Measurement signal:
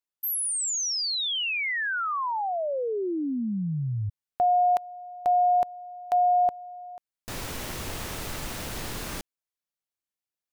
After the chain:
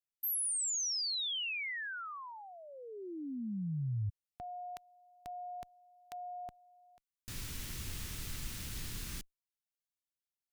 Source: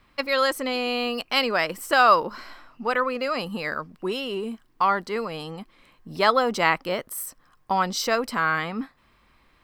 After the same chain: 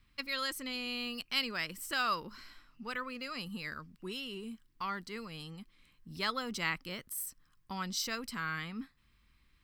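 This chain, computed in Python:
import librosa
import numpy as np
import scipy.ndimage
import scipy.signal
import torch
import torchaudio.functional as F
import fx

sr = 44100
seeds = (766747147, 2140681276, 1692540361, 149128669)

y = fx.tone_stack(x, sr, knobs='6-0-2')
y = y * librosa.db_to_amplitude(8.0)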